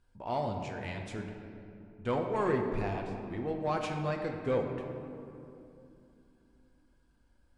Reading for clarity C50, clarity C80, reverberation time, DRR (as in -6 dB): 4.5 dB, 5.5 dB, 2.8 s, 2.0 dB